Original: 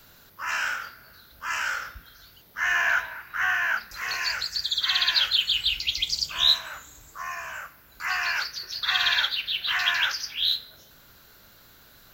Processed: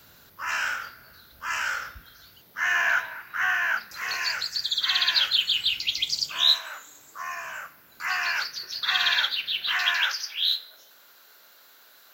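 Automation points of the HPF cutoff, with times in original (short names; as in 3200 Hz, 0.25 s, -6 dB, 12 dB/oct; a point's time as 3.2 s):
1.93 s 44 Hz
2.62 s 120 Hz
6.2 s 120 Hz
6.63 s 410 Hz
7.5 s 140 Hz
9.65 s 140 Hz
10.14 s 500 Hz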